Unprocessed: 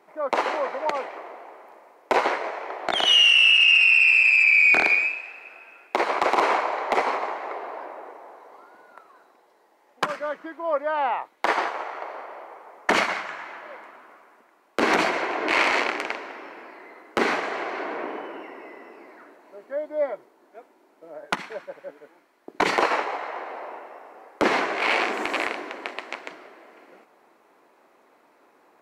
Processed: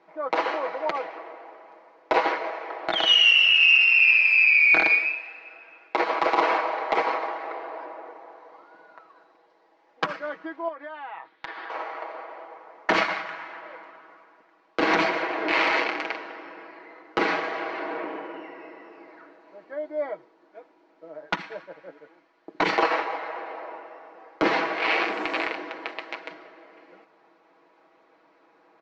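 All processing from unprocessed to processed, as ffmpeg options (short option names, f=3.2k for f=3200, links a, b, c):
-filter_complex "[0:a]asettb=1/sr,asplit=3[a][b][c];[a]atrim=end=10.684[d];[b]atrim=start=10.68:end=11.7,asetpts=PTS-STARTPTS,afade=t=in:d=0.004:c=qsin,afade=t=out:st=1.016:d=0.004:c=qsin,highpass=100,equalizer=f=570:t=q:w=4:g=-5,equalizer=f=1.7k:t=q:w=4:g=8,equalizer=f=3.5k:t=q:w=4:g=6,lowpass=f=5.4k:w=0.5412,lowpass=f=5.4k:w=1.3066,acompressor=threshold=-34dB:ratio=6:attack=3.2:release=140:knee=1:detection=peak[e];[c]atrim=start=11.696[f];[d][e]acrossfade=d=0.004:c1=hsin:c2=qsin[g];[g][f]acrossfade=d=0.004:c1=qsin:c2=hsin,lowpass=f=5.2k:w=0.5412,lowpass=f=5.2k:w=1.3066,aecho=1:1:6.2:0.65,volume=-2.5dB"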